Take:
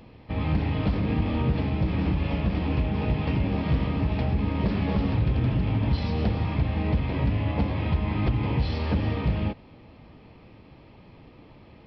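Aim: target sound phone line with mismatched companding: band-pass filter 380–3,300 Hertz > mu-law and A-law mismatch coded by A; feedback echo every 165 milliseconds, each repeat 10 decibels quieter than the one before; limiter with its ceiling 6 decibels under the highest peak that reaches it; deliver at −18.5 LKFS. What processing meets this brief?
brickwall limiter −22 dBFS
band-pass filter 380–3,300 Hz
repeating echo 165 ms, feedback 32%, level −10 dB
mu-law and A-law mismatch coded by A
level +22.5 dB

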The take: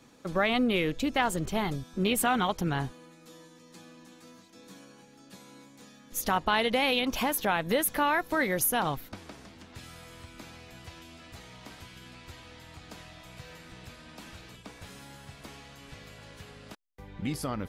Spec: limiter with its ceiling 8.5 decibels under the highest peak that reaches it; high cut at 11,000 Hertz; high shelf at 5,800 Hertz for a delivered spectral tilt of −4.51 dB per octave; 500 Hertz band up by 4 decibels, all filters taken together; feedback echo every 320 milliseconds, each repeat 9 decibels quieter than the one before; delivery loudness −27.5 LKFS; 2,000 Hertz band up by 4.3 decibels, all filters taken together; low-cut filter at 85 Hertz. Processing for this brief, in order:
high-pass filter 85 Hz
low-pass filter 11,000 Hz
parametric band 500 Hz +4.5 dB
parametric band 2,000 Hz +6 dB
high-shelf EQ 5,800 Hz −7 dB
brickwall limiter −18 dBFS
repeating echo 320 ms, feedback 35%, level −9 dB
level +1 dB

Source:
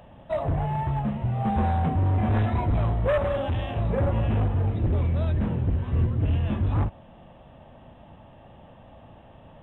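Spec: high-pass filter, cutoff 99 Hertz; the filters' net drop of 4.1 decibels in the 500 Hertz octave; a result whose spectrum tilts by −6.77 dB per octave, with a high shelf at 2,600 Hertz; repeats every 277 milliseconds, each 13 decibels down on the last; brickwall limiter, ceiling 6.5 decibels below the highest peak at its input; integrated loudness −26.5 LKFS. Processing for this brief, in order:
high-pass filter 99 Hz
parametric band 500 Hz −5.5 dB
high-shelf EQ 2,600 Hz +7 dB
brickwall limiter −20.5 dBFS
repeating echo 277 ms, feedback 22%, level −13 dB
level +3 dB

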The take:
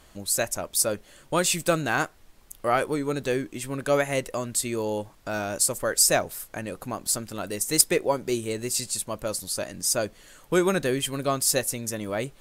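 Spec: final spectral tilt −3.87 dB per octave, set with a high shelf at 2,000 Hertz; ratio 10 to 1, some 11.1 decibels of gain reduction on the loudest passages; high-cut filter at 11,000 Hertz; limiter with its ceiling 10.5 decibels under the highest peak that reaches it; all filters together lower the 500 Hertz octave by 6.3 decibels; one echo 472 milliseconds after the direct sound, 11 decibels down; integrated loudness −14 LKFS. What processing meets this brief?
low-pass filter 11,000 Hz
parametric band 500 Hz −7.5 dB
high-shelf EQ 2,000 Hz −6 dB
downward compressor 10 to 1, threshold −30 dBFS
brickwall limiter −29.5 dBFS
single-tap delay 472 ms −11 dB
level +25.5 dB

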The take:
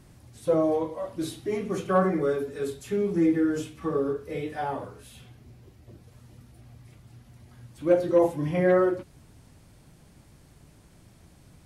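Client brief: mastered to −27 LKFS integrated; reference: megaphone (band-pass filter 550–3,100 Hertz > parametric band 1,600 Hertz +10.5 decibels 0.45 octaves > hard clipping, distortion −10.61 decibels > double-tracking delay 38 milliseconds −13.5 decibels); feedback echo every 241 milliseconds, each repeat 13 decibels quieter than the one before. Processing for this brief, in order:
band-pass filter 550–3,100 Hz
parametric band 1,600 Hz +10.5 dB 0.45 octaves
repeating echo 241 ms, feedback 22%, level −13 dB
hard clipping −22.5 dBFS
double-tracking delay 38 ms −13.5 dB
level +4 dB

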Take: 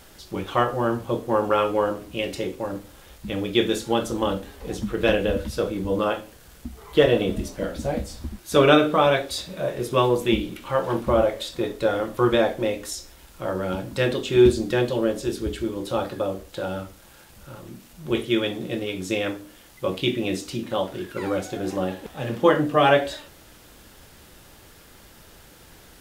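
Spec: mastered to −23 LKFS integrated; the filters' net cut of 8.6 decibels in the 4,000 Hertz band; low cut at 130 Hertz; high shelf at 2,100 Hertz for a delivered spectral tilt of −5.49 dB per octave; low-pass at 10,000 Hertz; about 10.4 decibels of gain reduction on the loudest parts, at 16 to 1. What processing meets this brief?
high-pass filter 130 Hz
low-pass filter 10,000 Hz
high-shelf EQ 2,100 Hz −6 dB
parametric band 4,000 Hz −5.5 dB
downward compressor 16 to 1, threshold −21 dBFS
level +6 dB

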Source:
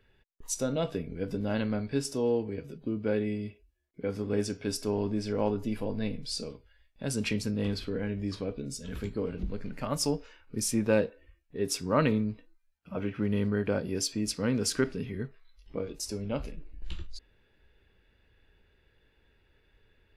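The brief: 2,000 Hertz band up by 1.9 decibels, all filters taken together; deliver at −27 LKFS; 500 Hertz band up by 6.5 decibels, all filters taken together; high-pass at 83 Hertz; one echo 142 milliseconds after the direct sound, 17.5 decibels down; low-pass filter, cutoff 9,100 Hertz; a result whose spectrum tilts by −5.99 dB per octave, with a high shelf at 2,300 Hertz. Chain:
high-pass filter 83 Hz
low-pass filter 9,100 Hz
parametric band 500 Hz +7.5 dB
parametric band 2,000 Hz +4.5 dB
high-shelf EQ 2,300 Hz −4.5 dB
single-tap delay 142 ms −17.5 dB
level +1.5 dB

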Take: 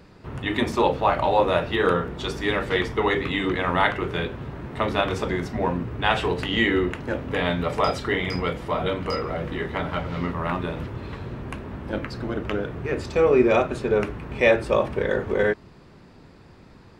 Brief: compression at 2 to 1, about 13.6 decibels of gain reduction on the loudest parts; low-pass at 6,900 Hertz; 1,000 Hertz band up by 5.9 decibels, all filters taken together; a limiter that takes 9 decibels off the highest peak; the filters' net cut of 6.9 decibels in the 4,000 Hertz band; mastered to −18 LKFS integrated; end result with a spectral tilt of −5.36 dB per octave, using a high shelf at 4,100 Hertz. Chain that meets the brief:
low-pass filter 6,900 Hz
parametric band 1,000 Hz +8 dB
parametric band 4,000 Hz −6.5 dB
high-shelf EQ 4,100 Hz −6 dB
downward compressor 2 to 1, threshold −37 dBFS
level +17 dB
brickwall limiter −6 dBFS

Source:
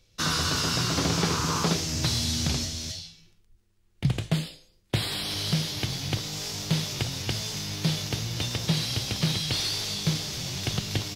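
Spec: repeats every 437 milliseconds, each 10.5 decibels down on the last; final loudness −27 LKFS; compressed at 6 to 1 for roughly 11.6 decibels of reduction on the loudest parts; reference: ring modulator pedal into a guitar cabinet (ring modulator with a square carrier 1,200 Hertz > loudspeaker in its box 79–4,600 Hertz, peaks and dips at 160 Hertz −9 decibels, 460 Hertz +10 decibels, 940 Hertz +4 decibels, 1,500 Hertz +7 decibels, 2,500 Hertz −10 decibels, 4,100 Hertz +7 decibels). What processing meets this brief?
downward compressor 6 to 1, threshold −33 dBFS
repeating echo 437 ms, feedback 30%, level −10.5 dB
ring modulator with a square carrier 1,200 Hz
loudspeaker in its box 79–4,600 Hz, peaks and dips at 160 Hz −9 dB, 460 Hz +10 dB, 940 Hz +4 dB, 1,500 Hz +7 dB, 2,500 Hz −10 dB, 4,100 Hz +7 dB
level +6.5 dB

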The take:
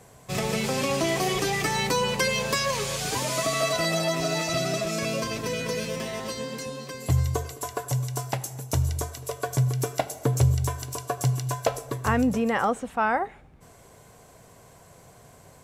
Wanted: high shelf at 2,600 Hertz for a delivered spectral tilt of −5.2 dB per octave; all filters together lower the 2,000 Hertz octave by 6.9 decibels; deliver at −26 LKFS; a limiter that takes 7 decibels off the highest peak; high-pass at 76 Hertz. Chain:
high-pass filter 76 Hz
parametric band 2,000 Hz −6.5 dB
high-shelf EQ 2,600 Hz −5 dB
level +3.5 dB
brickwall limiter −14.5 dBFS

